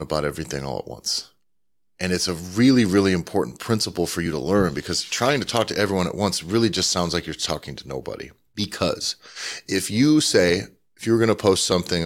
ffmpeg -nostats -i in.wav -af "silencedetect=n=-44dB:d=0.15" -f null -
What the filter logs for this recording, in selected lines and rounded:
silence_start: 1.28
silence_end: 2.00 | silence_duration: 0.72
silence_start: 8.32
silence_end: 8.57 | silence_duration: 0.25
silence_start: 10.72
silence_end: 10.97 | silence_duration: 0.25